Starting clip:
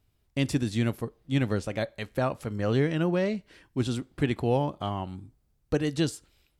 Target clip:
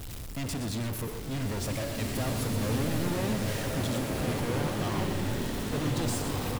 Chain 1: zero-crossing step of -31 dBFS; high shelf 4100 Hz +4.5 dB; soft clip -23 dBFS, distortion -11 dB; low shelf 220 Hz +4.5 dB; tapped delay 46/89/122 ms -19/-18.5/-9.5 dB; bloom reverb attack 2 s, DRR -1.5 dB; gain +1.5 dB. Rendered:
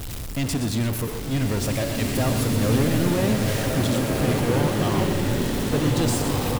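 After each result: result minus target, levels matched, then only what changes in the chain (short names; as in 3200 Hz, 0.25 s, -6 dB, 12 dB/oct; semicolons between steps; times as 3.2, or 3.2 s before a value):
soft clip: distortion -8 dB; zero-crossing step: distortion +7 dB
change: soft clip -35 dBFS, distortion -3 dB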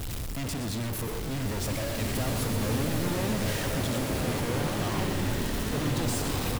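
zero-crossing step: distortion +7 dB
change: zero-crossing step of -38.5 dBFS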